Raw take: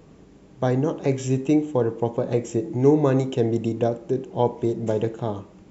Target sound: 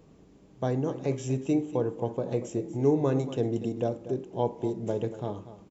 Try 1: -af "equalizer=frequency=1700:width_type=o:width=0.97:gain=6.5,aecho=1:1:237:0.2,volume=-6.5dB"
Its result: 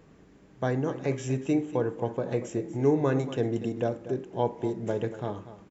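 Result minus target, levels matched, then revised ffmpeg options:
2,000 Hz band +7.0 dB
-af "equalizer=frequency=1700:width_type=o:width=0.97:gain=-3,aecho=1:1:237:0.2,volume=-6.5dB"

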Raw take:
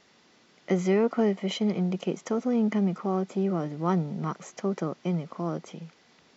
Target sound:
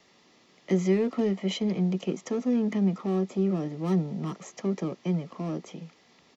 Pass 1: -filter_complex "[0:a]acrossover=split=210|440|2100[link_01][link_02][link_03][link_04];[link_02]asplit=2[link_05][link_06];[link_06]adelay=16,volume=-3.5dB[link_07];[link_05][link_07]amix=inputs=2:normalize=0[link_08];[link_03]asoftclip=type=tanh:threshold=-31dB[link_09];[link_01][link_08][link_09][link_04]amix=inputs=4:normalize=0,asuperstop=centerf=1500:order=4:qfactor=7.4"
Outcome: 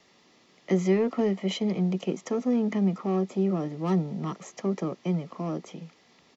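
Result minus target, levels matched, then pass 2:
soft clipping: distortion −6 dB
-filter_complex "[0:a]acrossover=split=210|440|2100[link_01][link_02][link_03][link_04];[link_02]asplit=2[link_05][link_06];[link_06]adelay=16,volume=-3.5dB[link_07];[link_05][link_07]amix=inputs=2:normalize=0[link_08];[link_03]asoftclip=type=tanh:threshold=-39.5dB[link_09];[link_01][link_08][link_09][link_04]amix=inputs=4:normalize=0,asuperstop=centerf=1500:order=4:qfactor=7.4"

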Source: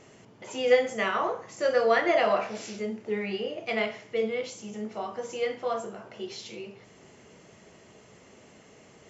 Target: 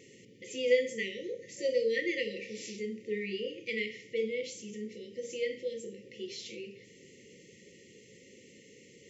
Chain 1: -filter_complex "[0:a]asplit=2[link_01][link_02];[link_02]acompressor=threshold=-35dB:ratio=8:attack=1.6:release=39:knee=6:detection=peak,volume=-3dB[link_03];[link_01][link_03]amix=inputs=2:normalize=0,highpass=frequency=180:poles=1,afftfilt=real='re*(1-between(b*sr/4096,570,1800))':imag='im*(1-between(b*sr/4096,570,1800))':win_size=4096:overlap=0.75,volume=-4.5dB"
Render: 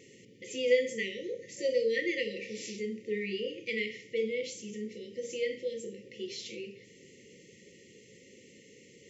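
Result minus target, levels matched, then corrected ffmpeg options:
downward compressor: peak gain reduction −7.5 dB
-filter_complex "[0:a]asplit=2[link_01][link_02];[link_02]acompressor=threshold=-43.5dB:ratio=8:attack=1.6:release=39:knee=6:detection=peak,volume=-3dB[link_03];[link_01][link_03]amix=inputs=2:normalize=0,highpass=frequency=180:poles=1,afftfilt=real='re*(1-between(b*sr/4096,570,1800))':imag='im*(1-between(b*sr/4096,570,1800))':win_size=4096:overlap=0.75,volume=-4.5dB"

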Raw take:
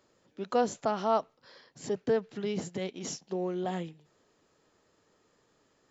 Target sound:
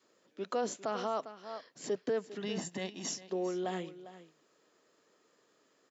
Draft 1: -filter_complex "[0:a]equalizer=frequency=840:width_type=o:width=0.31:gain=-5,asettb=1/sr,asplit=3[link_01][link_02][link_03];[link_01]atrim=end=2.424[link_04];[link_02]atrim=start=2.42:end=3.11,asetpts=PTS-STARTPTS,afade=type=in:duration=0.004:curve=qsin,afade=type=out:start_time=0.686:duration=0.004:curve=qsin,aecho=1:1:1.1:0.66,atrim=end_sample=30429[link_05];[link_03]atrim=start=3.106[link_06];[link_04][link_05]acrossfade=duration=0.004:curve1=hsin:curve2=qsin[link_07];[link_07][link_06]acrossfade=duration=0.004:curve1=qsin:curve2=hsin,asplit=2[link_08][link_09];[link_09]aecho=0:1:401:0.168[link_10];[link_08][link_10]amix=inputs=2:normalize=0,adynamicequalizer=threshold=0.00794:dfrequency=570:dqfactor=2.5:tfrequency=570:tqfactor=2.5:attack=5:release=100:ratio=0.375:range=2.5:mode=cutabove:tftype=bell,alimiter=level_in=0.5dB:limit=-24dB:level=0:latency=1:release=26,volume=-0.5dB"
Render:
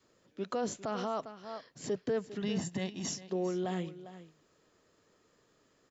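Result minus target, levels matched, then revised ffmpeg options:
250 Hz band +3.0 dB
-filter_complex "[0:a]highpass=260,equalizer=frequency=840:width_type=o:width=0.31:gain=-5,asettb=1/sr,asplit=3[link_01][link_02][link_03];[link_01]atrim=end=2.424[link_04];[link_02]atrim=start=2.42:end=3.11,asetpts=PTS-STARTPTS,afade=type=in:duration=0.004:curve=qsin,afade=type=out:start_time=0.686:duration=0.004:curve=qsin,aecho=1:1:1.1:0.66,atrim=end_sample=30429[link_05];[link_03]atrim=start=3.106[link_06];[link_04][link_05]acrossfade=duration=0.004:curve1=hsin:curve2=qsin[link_07];[link_07][link_06]acrossfade=duration=0.004:curve1=qsin:curve2=hsin,asplit=2[link_08][link_09];[link_09]aecho=0:1:401:0.168[link_10];[link_08][link_10]amix=inputs=2:normalize=0,adynamicequalizer=threshold=0.00794:dfrequency=570:dqfactor=2.5:tfrequency=570:tqfactor=2.5:attack=5:release=100:ratio=0.375:range=2.5:mode=cutabove:tftype=bell,alimiter=level_in=0.5dB:limit=-24dB:level=0:latency=1:release=26,volume=-0.5dB"

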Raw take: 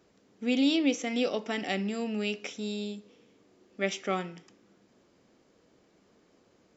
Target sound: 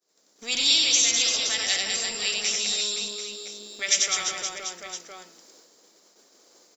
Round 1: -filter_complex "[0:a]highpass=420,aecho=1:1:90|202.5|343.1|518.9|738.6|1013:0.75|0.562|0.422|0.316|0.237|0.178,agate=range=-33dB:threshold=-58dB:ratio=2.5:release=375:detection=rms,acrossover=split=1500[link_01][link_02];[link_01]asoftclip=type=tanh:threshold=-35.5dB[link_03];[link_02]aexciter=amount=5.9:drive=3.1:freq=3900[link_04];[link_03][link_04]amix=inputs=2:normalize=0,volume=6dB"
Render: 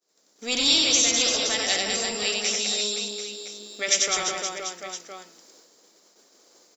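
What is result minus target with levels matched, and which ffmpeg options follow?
soft clipping: distortion −5 dB
-filter_complex "[0:a]highpass=420,aecho=1:1:90|202.5|343.1|518.9|738.6|1013:0.75|0.562|0.422|0.316|0.237|0.178,agate=range=-33dB:threshold=-58dB:ratio=2.5:release=375:detection=rms,acrossover=split=1500[link_01][link_02];[link_01]asoftclip=type=tanh:threshold=-46.5dB[link_03];[link_02]aexciter=amount=5.9:drive=3.1:freq=3900[link_04];[link_03][link_04]amix=inputs=2:normalize=0,volume=6dB"

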